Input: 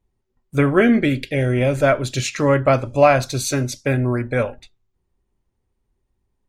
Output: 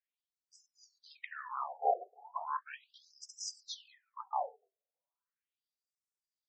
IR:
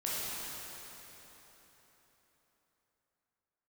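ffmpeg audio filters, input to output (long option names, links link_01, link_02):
-af "asetrate=23361,aresample=44100,atempo=1.88775,bandreject=frequency=60:width_type=h:width=6,bandreject=frequency=120:width_type=h:width=6,bandreject=frequency=180:width_type=h:width=6,bandreject=frequency=240:width_type=h:width=6,bandreject=frequency=300:width_type=h:width=6,afftfilt=real='re*between(b*sr/1024,540*pow(7200/540,0.5+0.5*sin(2*PI*0.37*pts/sr))/1.41,540*pow(7200/540,0.5+0.5*sin(2*PI*0.37*pts/sr))*1.41)':imag='im*between(b*sr/1024,540*pow(7200/540,0.5+0.5*sin(2*PI*0.37*pts/sr))/1.41,540*pow(7200/540,0.5+0.5*sin(2*PI*0.37*pts/sr))*1.41)':win_size=1024:overlap=0.75,volume=-4dB"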